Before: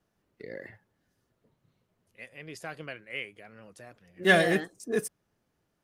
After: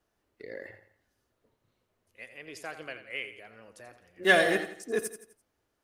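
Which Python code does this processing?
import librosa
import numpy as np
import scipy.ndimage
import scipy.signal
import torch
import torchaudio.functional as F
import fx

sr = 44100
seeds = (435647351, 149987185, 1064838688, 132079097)

y = fx.peak_eq(x, sr, hz=160.0, db=-11.5, octaves=0.9)
y = fx.echo_feedback(y, sr, ms=85, feedback_pct=41, wet_db=-11.0)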